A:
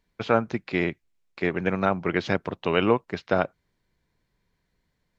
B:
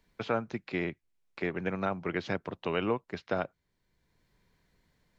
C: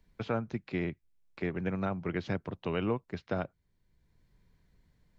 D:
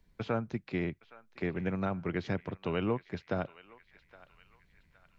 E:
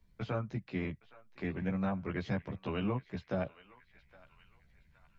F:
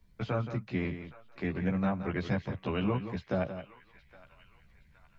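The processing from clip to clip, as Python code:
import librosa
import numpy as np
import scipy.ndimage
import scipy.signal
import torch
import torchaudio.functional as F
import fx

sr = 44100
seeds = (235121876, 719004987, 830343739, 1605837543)

y1 = fx.band_squash(x, sr, depth_pct=40)
y1 = F.gain(torch.from_numpy(y1), -8.0).numpy()
y2 = fx.low_shelf(y1, sr, hz=210.0, db=12.0)
y2 = F.gain(torch.from_numpy(y2), -4.5).numpy()
y3 = fx.echo_banded(y2, sr, ms=817, feedback_pct=54, hz=2200.0, wet_db=-15.5)
y4 = fx.chorus_voices(y3, sr, voices=6, hz=0.39, base_ms=15, depth_ms=1.0, mix_pct=50)
y5 = y4 + 10.0 ** (-10.5 / 20.0) * np.pad(y4, (int(173 * sr / 1000.0), 0))[:len(y4)]
y5 = F.gain(torch.from_numpy(y5), 3.5).numpy()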